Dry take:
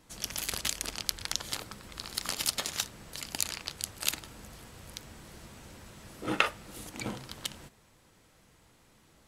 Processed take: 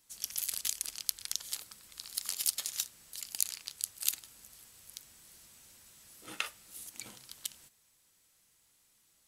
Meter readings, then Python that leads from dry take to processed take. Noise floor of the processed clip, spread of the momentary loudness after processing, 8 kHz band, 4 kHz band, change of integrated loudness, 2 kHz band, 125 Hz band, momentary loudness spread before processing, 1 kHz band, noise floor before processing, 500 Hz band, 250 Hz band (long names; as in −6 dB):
−70 dBFS, 22 LU, 0.0 dB, −5.0 dB, −2.0 dB, −10.0 dB, below −15 dB, 19 LU, −14.5 dB, −63 dBFS, −18.5 dB, −19.5 dB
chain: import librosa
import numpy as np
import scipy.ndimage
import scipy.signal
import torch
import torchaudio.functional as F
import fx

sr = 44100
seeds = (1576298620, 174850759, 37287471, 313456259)

y = scipy.signal.lfilter([1.0, -0.9], [1.0], x)